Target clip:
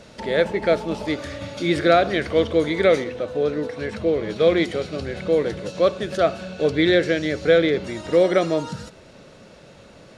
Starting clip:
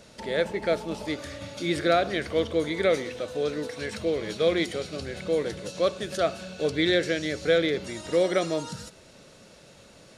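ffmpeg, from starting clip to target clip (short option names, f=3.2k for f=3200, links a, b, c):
-af "asetnsamples=n=441:p=0,asendcmd='3.04 lowpass f 1400;4.36 lowpass f 2500',lowpass=f=3.9k:p=1,volume=6.5dB"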